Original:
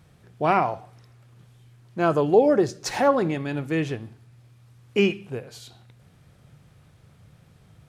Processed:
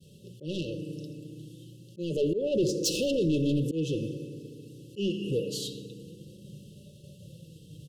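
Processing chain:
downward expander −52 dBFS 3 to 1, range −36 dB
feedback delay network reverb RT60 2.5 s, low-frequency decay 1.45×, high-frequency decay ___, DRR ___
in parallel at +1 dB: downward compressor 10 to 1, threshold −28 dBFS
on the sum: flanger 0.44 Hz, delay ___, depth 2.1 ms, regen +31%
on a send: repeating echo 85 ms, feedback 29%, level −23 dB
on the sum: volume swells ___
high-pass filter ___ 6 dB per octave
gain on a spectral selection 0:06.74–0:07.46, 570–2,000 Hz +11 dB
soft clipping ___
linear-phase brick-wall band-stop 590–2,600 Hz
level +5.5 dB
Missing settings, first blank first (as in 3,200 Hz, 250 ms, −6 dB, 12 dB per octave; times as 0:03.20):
0.65×, 15 dB, 4.8 ms, 280 ms, 120 Hz, −27 dBFS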